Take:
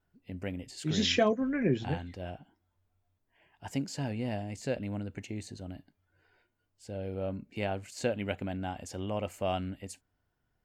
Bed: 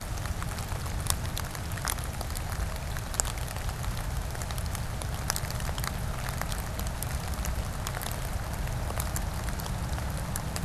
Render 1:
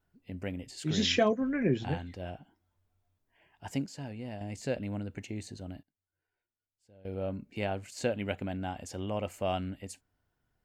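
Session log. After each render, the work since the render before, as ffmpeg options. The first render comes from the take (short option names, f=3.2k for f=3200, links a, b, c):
-filter_complex "[0:a]asplit=5[a][b][c][d][e];[a]atrim=end=3.862[f];[b]atrim=start=3.858:end=4.412,asetpts=PTS-STARTPTS,volume=-6.5dB[g];[c]atrim=start=4.408:end=5.83,asetpts=PTS-STARTPTS,afade=t=out:st=1.302:d=0.12:c=log:silence=0.105925[h];[d]atrim=start=5.83:end=7.05,asetpts=PTS-STARTPTS,volume=-19.5dB[i];[e]atrim=start=7.05,asetpts=PTS-STARTPTS,afade=t=in:d=0.12:c=log:silence=0.105925[j];[f][g]acrossfade=d=0.004:c1=hsin:c2=hsin[k];[h][i][j]concat=n=3:v=0:a=1[l];[k][l]acrossfade=d=0.004:c1=hsin:c2=hsin"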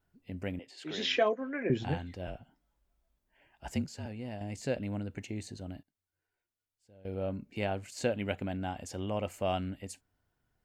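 -filter_complex "[0:a]asettb=1/sr,asplit=3[a][b][c];[a]atrim=end=0.594[d];[b]atrim=start=0.59:end=1.7,asetpts=PTS-STARTPTS,afade=t=in:d=0.004:c=qsin,afade=t=out:st=1.106:d=0.004:c=qsin,acrossover=split=310 4200:gain=0.0708 1 0.2[e][f][g];[e][f][g]amix=inputs=3:normalize=0[h];[c]atrim=start=1.696[i];[d][h]acrossfade=d=0.004:c1=hsin:c2=qsin[j];[j][i]acrossfade=d=0.004:c1=qsin:c2=hsin,asettb=1/sr,asplit=3[k][l][m];[k]atrim=end=2.274[n];[l]atrim=start=2.27:end=4.06,asetpts=PTS-STARTPTS,afade=t=in:d=0.004:c=qsin,afade=t=out:st=1.786:d=0.004:c=qsin,afreqshift=-40[o];[m]atrim=start=4.056[p];[n][o]acrossfade=d=0.004:c1=hsin:c2=qsin[q];[q][p]acrossfade=d=0.004:c1=qsin:c2=hsin"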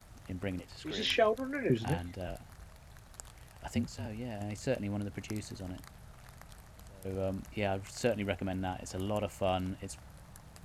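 -filter_complex "[1:a]volume=-20dB[a];[0:a][a]amix=inputs=2:normalize=0"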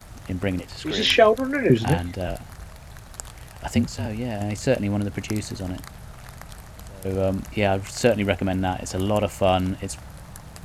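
-af "volume=12dB"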